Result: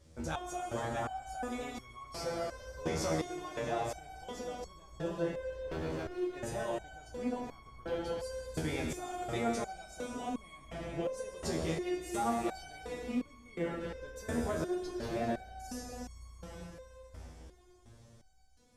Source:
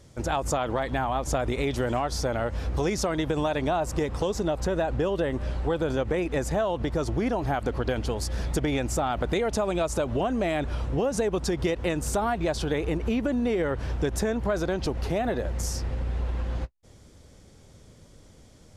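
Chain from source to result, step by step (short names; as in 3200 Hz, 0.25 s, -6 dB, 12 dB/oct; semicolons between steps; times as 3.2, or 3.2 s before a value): 5.68–6.36 hard clip -29 dBFS, distortion -19 dB; plate-style reverb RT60 4.3 s, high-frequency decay 0.9×, DRR 0.5 dB; stepped resonator 2.8 Hz 80–1100 Hz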